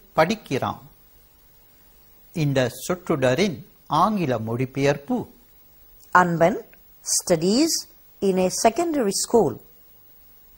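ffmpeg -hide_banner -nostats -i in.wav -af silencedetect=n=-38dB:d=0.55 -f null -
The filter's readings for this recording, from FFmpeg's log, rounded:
silence_start: 0.87
silence_end: 2.35 | silence_duration: 1.47
silence_start: 5.28
silence_end: 6.04 | silence_duration: 0.75
silence_start: 9.60
silence_end: 10.57 | silence_duration: 0.97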